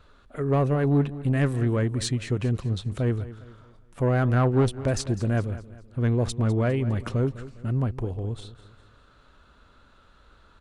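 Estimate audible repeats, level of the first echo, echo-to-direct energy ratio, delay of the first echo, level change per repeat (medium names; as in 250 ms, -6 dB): 3, -16.0 dB, -15.0 dB, 203 ms, -7.5 dB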